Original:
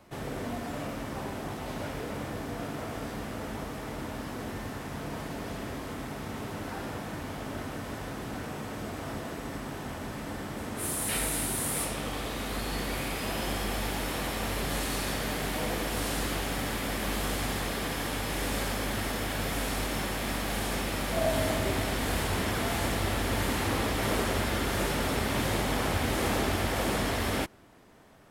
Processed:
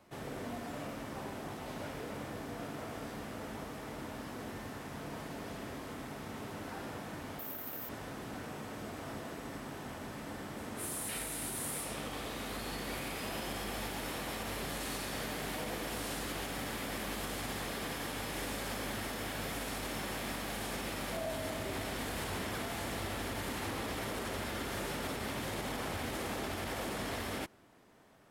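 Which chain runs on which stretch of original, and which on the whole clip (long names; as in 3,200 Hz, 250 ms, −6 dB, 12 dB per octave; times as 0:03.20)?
0:07.39–0:07.89: low-shelf EQ 160 Hz −8.5 dB + bad sample-rate conversion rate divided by 3×, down none, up zero stuff
whole clip: low-shelf EQ 77 Hz −8 dB; brickwall limiter −23.5 dBFS; level −5.5 dB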